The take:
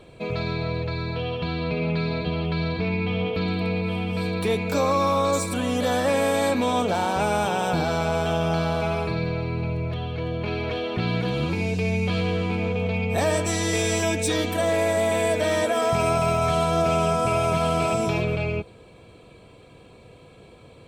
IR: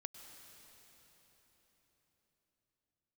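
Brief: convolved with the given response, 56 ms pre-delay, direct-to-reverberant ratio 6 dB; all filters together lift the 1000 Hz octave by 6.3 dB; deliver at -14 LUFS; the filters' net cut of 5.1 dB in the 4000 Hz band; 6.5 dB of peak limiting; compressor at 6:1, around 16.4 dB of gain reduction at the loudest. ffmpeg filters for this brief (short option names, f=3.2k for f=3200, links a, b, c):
-filter_complex "[0:a]equalizer=f=1k:t=o:g=8.5,equalizer=f=4k:t=o:g=-7,acompressor=threshold=-33dB:ratio=6,alimiter=level_in=5.5dB:limit=-24dB:level=0:latency=1,volume=-5.5dB,asplit=2[a][b];[1:a]atrim=start_sample=2205,adelay=56[c];[b][c]afir=irnorm=-1:irlink=0,volume=-2dB[d];[a][d]amix=inputs=2:normalize=0,volume=23.5dB"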